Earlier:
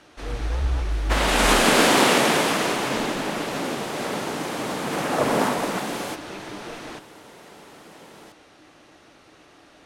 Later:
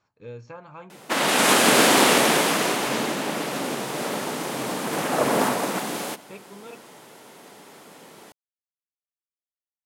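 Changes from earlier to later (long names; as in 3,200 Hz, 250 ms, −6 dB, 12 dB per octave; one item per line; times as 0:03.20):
first sound: muted
second sound: add high-pass filter 120 Hz
master: add high-shelf EQ 9,300 Hz +8.5 dB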